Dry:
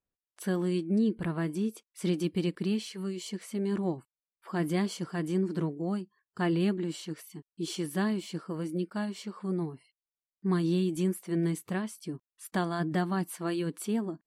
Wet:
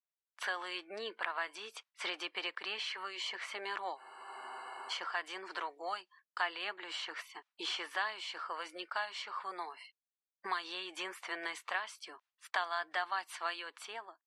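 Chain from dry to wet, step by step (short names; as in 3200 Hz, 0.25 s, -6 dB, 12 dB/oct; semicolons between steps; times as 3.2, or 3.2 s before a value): ending faded out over 0.82 s; LPF 3600 Hz 12 dB/oct; expander -51 dBFS; HPF 810 Hz 24 dB/oct; spectral freeze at 3.99, 0.92 s; three-band squash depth 70%; gain +6 dB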